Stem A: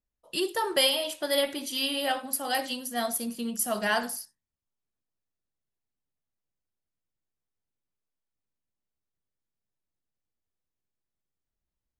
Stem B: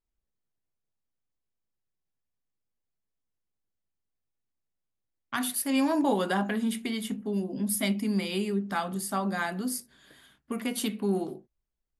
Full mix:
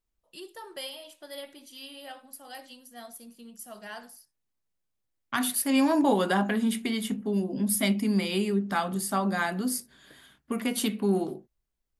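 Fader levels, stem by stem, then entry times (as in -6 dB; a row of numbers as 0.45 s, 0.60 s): -15.0 dB, +2.5 dB; 0.00 s, 0.00 s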